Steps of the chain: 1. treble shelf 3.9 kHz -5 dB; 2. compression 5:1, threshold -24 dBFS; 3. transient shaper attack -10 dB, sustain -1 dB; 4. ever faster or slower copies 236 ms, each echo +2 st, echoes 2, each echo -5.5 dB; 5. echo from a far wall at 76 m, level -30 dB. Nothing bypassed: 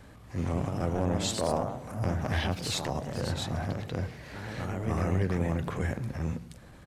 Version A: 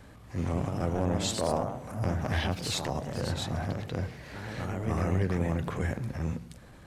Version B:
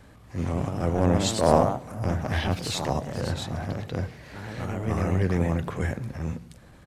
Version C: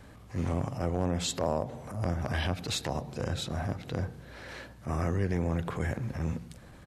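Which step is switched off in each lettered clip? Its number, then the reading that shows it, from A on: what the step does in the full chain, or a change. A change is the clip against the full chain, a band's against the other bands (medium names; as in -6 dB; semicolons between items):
5, echo-to-direct -31.5 dB to none; 2, mean gain reduction 2.5 dB; 4, loudness change -1.0 LU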